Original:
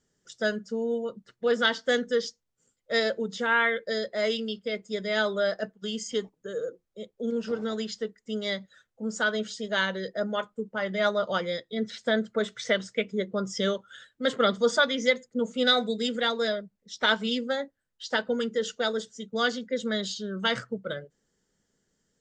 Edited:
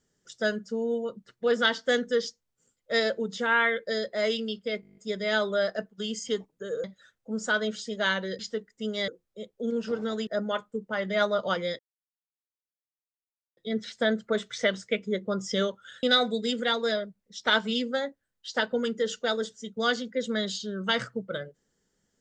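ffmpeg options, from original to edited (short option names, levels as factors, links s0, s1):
-filter_complex "[0:a]asplit=15[s0][s1][s2][s3][s4][s5][s6][s7][s8][s9][s10][s11][s12][s13][s14];[s0]atrim=end=4.832[s15];[s1]atrim=start=4.808:end=4.832[s16];[s2]atrim=start=4.808:end=4.832[s17];[s3]atrim=start=4.808:end=4.832[s18];[s4]atrim=start=4.808:end=4.832[s19];[s5]atrim=start=4.808:end=4.832[s20];[s6]atrim=start=4.808:end=4.832[s21];[s7]atrim=start=4.808:end=4.832[s22];[s8]atrim=start=4.808:end=6.682[s23];[s9]atrim=start=8.558:end=10.112[s24];[s10]atrim=start=7.868:end=8.562[s25];[s11]atrim=start=6.678:end=7.872[s26];[s12]atrim=start=10.108:end=11.63,asetpts=PTS-STARTPTS,afade=t=out:st=1.518:d=0.004:c=hsin,apad=pad_dur=1.78[s27];[s13]atrim=start=11.63:end=14.092,asetpts=PTS-STARTPTS,afade=t=in:d=0.004:c=hsin[s28];[s14]atrim=start=15.588[s29];[s15][s16]acrossfade=d=0.004:c1=hsin:c2=hsin[s30];[s30][s17]acrossfade=d=0.004:c1=hsin:c2=hsin[s31];[s31][s18]acrossfade=d=0.004:c1=hsin:c2=hsin[s32];[s32][s19]acrossfade=d=0.004:c1=hsin:c2=hsin[s33];[s33][s20]acrossfade=d=0.004:c1=hsin:c2=hsin[s34];[s34][s21]acrossfade=d=0.004:c1=hsin:c2=hsin[s35];[s35][s22]acrossfade=d=0.004:c1=hsin:c2=hsin[s36];[s36][s23]acrossfade=d=0.004:c1=hsin:c2=hsin[s37];[s37][s24]acrossfade=d=0.004:c1=hsin:c2=hsin[s38];[s38][s25]acrossfade=d=0.004:c1=hsin:c2=hsin[s39];[s39][s26]acrossfade=d=0.004:c1=hsin:c2=hsin[s40];[s27][s28]concat=n=2:v=0:a=1[s41];[s40][s41]acrossfade=d=0.004:c1=hsin:c2=hsin[s42];[s42][s29]acrossfade=d=0.004:c1=hsin:c2=hsin"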